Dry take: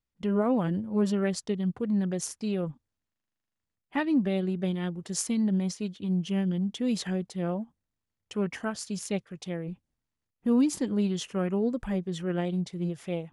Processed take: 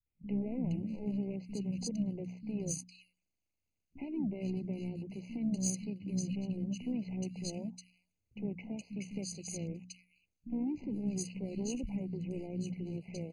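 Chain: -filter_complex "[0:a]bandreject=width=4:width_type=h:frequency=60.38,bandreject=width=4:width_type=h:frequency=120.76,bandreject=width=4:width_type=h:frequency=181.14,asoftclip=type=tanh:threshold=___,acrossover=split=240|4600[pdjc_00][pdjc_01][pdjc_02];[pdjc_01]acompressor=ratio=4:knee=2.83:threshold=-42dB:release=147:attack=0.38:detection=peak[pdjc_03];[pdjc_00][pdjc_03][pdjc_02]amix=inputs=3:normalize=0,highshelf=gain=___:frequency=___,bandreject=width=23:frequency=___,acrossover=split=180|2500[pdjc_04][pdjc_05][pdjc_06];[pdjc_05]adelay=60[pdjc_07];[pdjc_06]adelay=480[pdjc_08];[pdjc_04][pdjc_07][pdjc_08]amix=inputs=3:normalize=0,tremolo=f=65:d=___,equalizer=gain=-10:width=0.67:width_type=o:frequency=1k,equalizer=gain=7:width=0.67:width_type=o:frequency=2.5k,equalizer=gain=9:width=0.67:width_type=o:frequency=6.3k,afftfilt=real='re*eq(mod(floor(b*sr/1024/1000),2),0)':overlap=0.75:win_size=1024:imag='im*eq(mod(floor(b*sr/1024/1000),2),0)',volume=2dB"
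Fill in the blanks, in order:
-25dB, -9.5, 4k, 5.2k, 0.4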